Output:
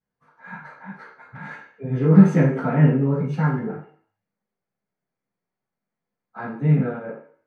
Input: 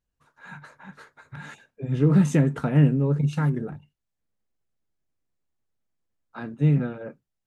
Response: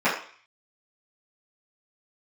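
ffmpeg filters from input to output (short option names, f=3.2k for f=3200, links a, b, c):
-filter_complex "[1:a]atrim=start_sample=2205,asetrate=38367,aresample=44100[a];[0:a][a]afir=irnorm=-1:irlink=0,volume=-14dB"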